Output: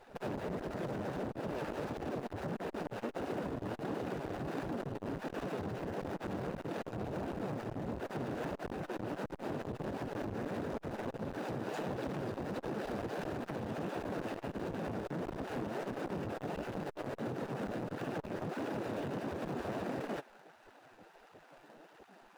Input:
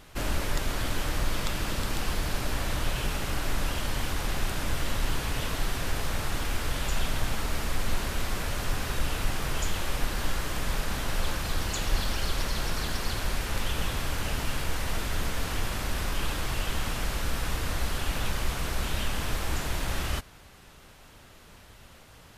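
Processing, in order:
running median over 41 samples
gate on every frequency bin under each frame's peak −20 dB weak
spectral tilt −2 dB per octave
brickwall limiter −32 dBFS, peak gain reduction 8.5 dB
downward compressor, threshold −42 dBFS, peak gain reduction 6.5 dB
flanger 1.5 Hz, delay 1.8 ms, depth 8.5 ms, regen +46%
saturating transformer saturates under 630 Hz
level +14 dB

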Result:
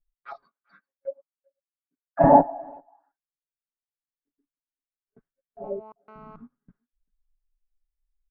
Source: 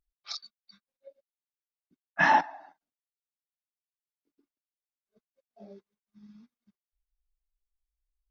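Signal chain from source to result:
0:00.43–0:02.24: high-pass filter 370 Hz 12 dB per octave
noise gate with hold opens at −58 dBFS
spectral tilt −4 dB per octave
comb filter 7.2 ms, depth 95%
far-end echo of a speakerphone 390 ms, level −29 dB
0:05.64–0:06.36: phone interference −54 dBFS
envelope-controlled low-pass 580–1,800 Hz down, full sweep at −37 dBFS
level +3.5 dB

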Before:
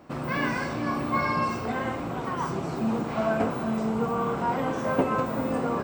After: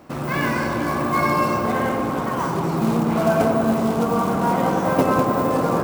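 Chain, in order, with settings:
floating-point word with a short mantissa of 2 bits
on a send: delay with a low-pass on its return 97 ms, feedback 83%, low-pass 1,200 Hz, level −4 dB
on the sum: level +4.5 dB

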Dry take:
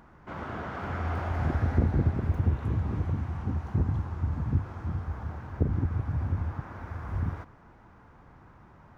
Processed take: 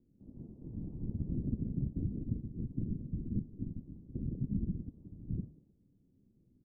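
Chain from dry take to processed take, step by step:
far-end echo of a speakerphone 250 ms, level −7 dB
brickwall limiter −22 dBFS, peak gain reduction 10 dB
spectral tilt +4 dB per octave
random phases in short frames
inverse Chebyshev low-pass filter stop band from 1,200 Hz, stop band 80 dB
wrong playback speed 33 rpm record played at 45 rpm
hum removal 77.85 Hz, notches 38
expander for the loud parts 1.5 to 1, over −56 dBFS
level +10.5 dB

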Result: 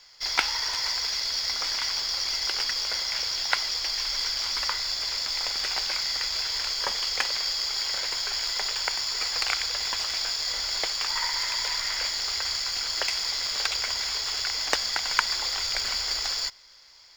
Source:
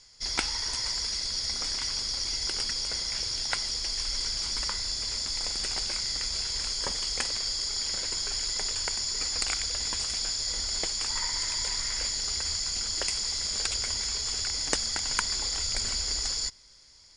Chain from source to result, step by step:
running median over 5 samples
three-way crossover with the lows and the highs turned down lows −16 dB, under 540 Hz, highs −13 dB, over 6,200 Hz
level +7.5 dB

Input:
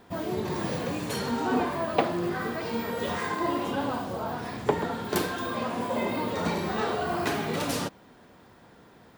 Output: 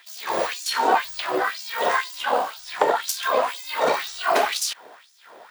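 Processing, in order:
auto-filter high-pass sine 1.2 Hz 520–6,100 Hz
time stretch by overlap-add 0.6×, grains 29 ms
level +8.5 dB

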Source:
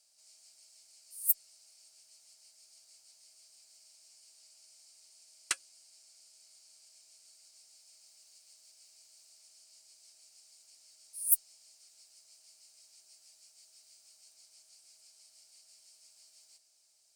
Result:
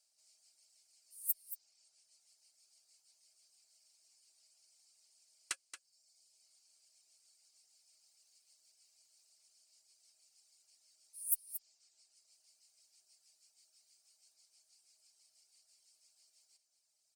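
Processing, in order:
reverb reduction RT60 0.99 s
single-tap delay 227 ms −11.5 dB
level −7.5 dB

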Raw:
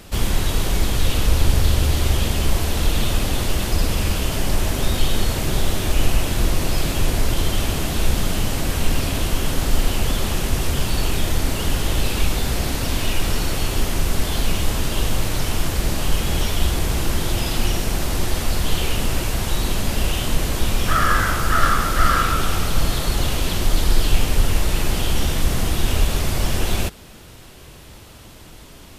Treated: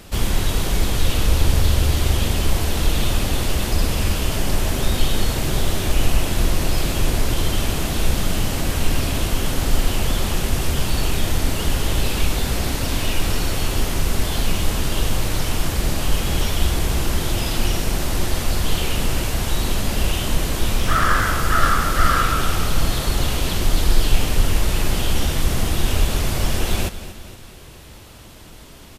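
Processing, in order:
repeating echo 234 ms, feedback 49%, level −14 dB
0:20.78–0:21.22: highs frequency-modulated by the lows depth 0.2 ms

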